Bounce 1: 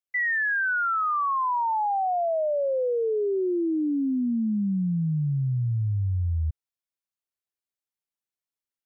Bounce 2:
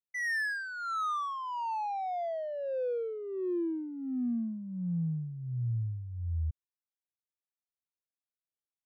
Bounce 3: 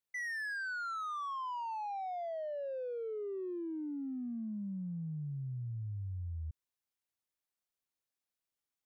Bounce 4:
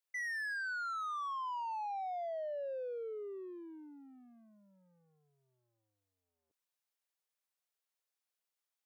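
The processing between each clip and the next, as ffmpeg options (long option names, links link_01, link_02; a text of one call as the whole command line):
ffmpeg -i in.wav -filter_complex "[0:a]acrossover=split=760[link_01][link_02];[link_01]aeval=exprs='val(0)*(1-0.7/2+0.7/2*cos(2*PI*1.4*n/s))':channel_layout=same[link_03];[link_02]aeval=exprs='val(0)*(1-0.7/2-0.7/2*cos(2*PI*1.4*n/s))':channel_layout=same[link_04];[link_03][link_04]amix=inputs=2:normalize=0,adynamicsmooth=sensitivity=6:basefreq=1200,volume=-5.5dB" out.wav
ffmpeg -i in.wav -af "alimiter=level_in=15.5dB:limit=-24dB:level=0:latency=1:release=22,volume=-15.5dB,volume=3dB" out.wav
ffmpeg -i in.wav -af "highpass=frequency=430:width=0.5412,highpass=frequency=430:width=1.3066" out.wav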